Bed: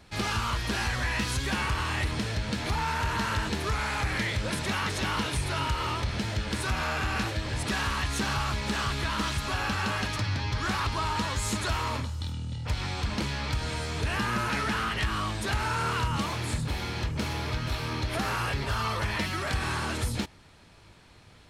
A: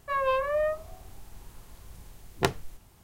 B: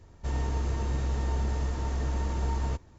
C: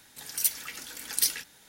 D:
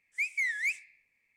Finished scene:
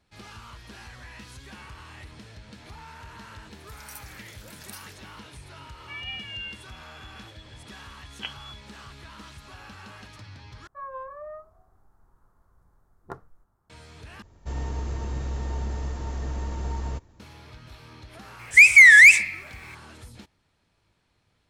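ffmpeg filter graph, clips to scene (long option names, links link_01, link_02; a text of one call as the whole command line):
ffmpeg -i bed.wav -i cue0.wav -i cue1.wav -i cue2.wav -i cue3.wav -filter_complex "[1:a]asplit=2[link_01][link_02];[0:a]volume=-15.5dB[link_03];[3:a]acompressor=threshold=-29dB:ratio=6:attack=3.2:release=140:knee=1:detection=peak[link_04];[link_01]lowpass=frequency=2900:width_type=q:width=0.5098,lowpass=frequency=2900:width_type=q:width=0.6013,lowpass=frequency=2900:width_type=q:width=0.9,lowpass=frequency=2900:width_type=q:width=2.563,afreqshift=-3400[link_05];[link_02]highshelf=frequency=1900:width_type=q:width=3:gain=-12.5[link_06];[4:a]alimiter=level_in=32dB:limit=-1dB:release=50:level=0:latency=1[link_07];[link_03]asplit=3[link_08][link_09][link_10];[link_08]atrim=end=10.674[link_11];[link_06]atrim=end=3.03,asetpts=PTS-STARTPTS,volume=-15dB[link_12];[link_09]atrim=start=13.696:end=14.224[link_13];[2:a]atrim=end=2.98,asetpts=PTS-STARTPTS,volume=-1.5dB[link_14];[link_10]atrim=start=17.196[link_15];[link_04]atrim=end=1.68,asetpts=PTS-STARTPTS,volume=-10dB,afade=type=in:duration=0.004:curve=hsin,afade=type=out:start_time=1.676:duration=0.004:curve=hsin,adelay=3510[link_16];[link_05]atrim=end=3.03,asetpts=PTS-STARTPTS,volume=-10.5dB,afade=type=in:duration=0.004:curve=hsin,afade=type=out:start_time=3.026:duration=0.004:curve=hsin,adelay=5800[link_17];[link_07]atrim=end=1.36,asetpts=PTS-STARTPTS,volume=-4dB,afade=type=in:duration=0.004:curve=hsin,afade=type=out:start_time=1.356:duration=0.004:curve=hsin,adelay=18390[link_18];[link_11][link_12]acrossfade=duration=0.004:curve1=hsin:curve2=hsin[link_19];[link_19][link_13]acrossfade=duration=0.004:curve1=hsin:curve2=hsin[link_20];[link_20][link_14]acrossfade=duration=0.004:curve1=hsin:curve2=hsin[link_21];[link_21][link_15]acrossfade=duration=0.004:curve1=hsin:curve2=hsin[link_22];[link_22][link_16][link_17][link_18]amix=inputs=4:normalize=0" out.wav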